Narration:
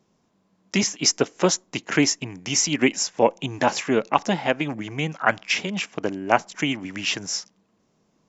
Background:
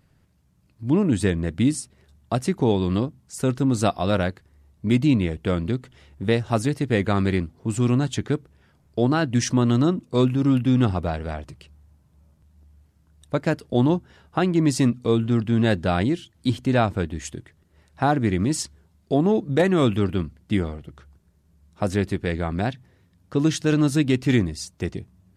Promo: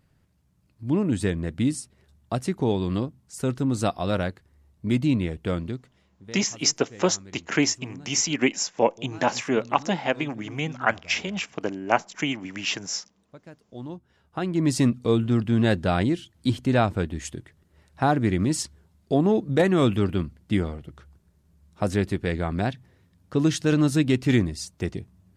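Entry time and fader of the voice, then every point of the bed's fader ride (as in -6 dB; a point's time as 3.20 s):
5.60 s, -2.5 dB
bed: 5.56 s -3.5 dB
6.43 s -23.5 dB
13.55 s -23.5 dB
14.74 s -1 dB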